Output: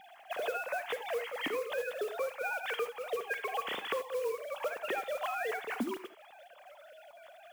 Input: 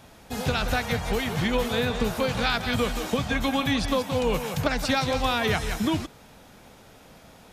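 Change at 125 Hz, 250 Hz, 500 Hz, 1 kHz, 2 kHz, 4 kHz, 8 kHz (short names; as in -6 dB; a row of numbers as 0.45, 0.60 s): under -30 dB, -18.5 dB, -7.0 dB, -9.0 dB, -8.0 dB, -14.5 dB, -14.5 dB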